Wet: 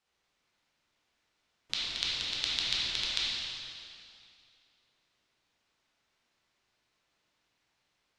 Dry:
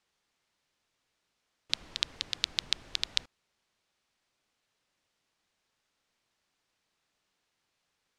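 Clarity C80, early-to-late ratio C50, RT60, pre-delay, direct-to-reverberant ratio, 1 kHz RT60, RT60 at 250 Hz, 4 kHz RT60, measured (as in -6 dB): -1.0 dB, -3.5 dB, 2.4 s, 5 ms, -7.5 dB, 2.4 s, 2.4 s, 2.3 s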